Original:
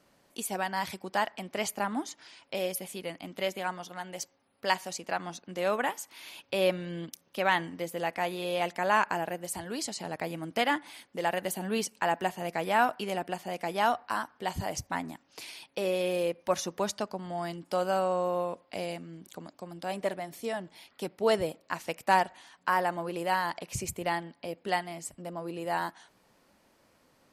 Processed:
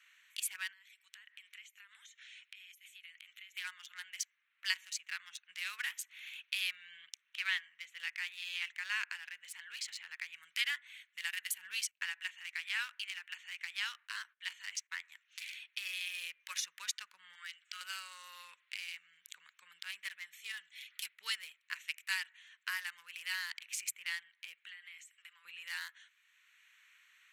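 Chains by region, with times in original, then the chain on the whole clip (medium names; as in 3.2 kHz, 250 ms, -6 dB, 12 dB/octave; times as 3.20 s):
0.72–3.57 s: amplifier tone stack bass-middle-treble 10-0-10 + band-stop 4.7 kHz, Q 24 + compression 16:1, threshold -51 dBFS
6.97–10.36 s: high-pass 180 Hz + distance through air 69 m
11.91–15.12 s: band-pass 590–7000 Hz + gate -60 dBFS, range -17 dB
17.35–17.81 s: Chebyshev band-pass 1.3–8.1 kHz, order 3 + upward compressor, threshold -60 dBFS
20.57–21.14 s: treble shelf 3.1 kHz +9.5 dB + comb of notches 270 Hz
24.67–25.45 s: high-pass 1.2 kHz + compression 10:1, threshold -47 dBFS
whole clip: local Wiener filter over 9 samples; inverse Chebyshev high-pass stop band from 740 Hz, stop band 50 dB; three bands compressed up and down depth 40%; trim +2.5 dB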